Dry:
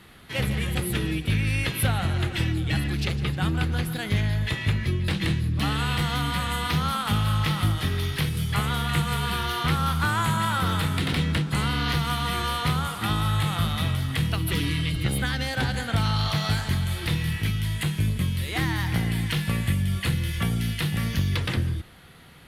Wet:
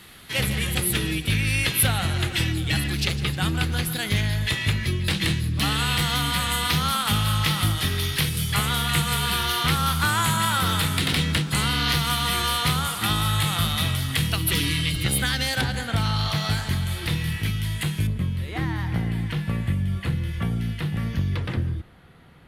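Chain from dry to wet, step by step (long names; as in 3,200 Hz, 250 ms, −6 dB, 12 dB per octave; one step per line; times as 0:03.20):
high-shelf EQ 2,500 Hz +10 dB, from 0:15.61 +2 dB, from 0:18.07 −12 dB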